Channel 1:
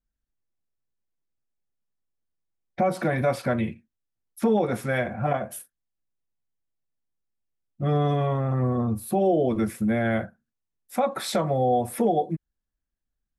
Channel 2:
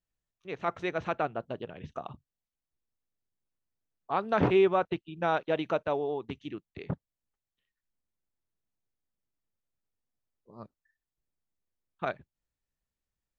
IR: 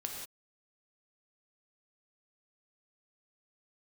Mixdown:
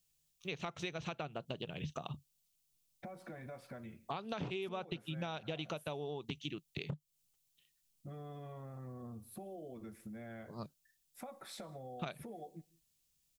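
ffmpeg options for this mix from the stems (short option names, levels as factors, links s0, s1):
-filter_complex "[0:a]acompressor=threshold=0.0251:ratio=6,adelay=250,volume=0.178,asplit=2[s0][s1];[s1]volume=0.133[s2];[1:a]acompressor=threshold=0.0251:ratio=2.5,equalizer=f=150:t=o:w=0.47:g=11.5,aexciter=amount=5.3:drive=3.4:freq=2500,volume=1.06[s3];[2:a]atrim=start_sample=2205[s4];[s2][s4]afir=irnorm=-1:irlink=0[s5];[s0][s3][s5]amix=inputs=3:normalize=0,acompressor=threshold=0.0126:ratio=6"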